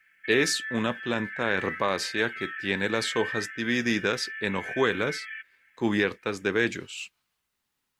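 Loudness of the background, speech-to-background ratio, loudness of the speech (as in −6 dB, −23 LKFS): −36.0 LKFS, 8.0 dB, −28.0 LKFS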